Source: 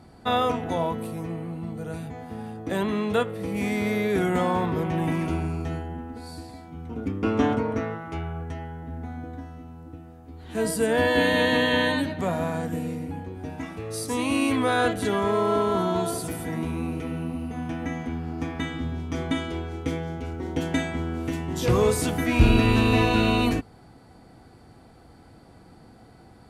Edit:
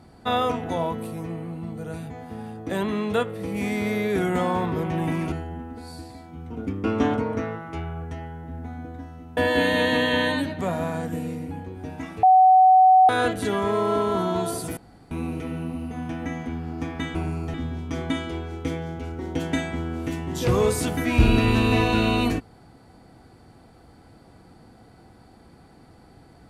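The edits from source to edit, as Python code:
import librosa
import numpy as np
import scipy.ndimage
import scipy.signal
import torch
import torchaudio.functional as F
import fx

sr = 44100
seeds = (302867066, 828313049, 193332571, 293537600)

y = fx.edit(x, sr, fx.move(start_s=5.32, length_s=0.39, to_s=18.75),
    fx.cut(start_s=9.76, length_s=1.21),
    fx.bleep(start_s=13.83, length_s=0.86, hz=750.0, db=-10.5),
    fx.room_tone_fill(start_s=16.37, length_s=0.34), tone=tone)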